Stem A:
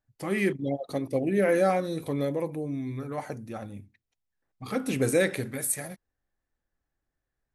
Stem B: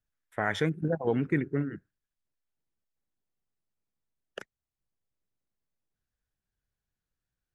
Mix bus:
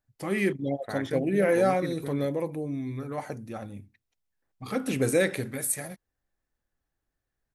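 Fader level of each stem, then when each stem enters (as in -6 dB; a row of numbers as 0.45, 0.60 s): 0.0, -7.5 dB; 0.00, 0.50 s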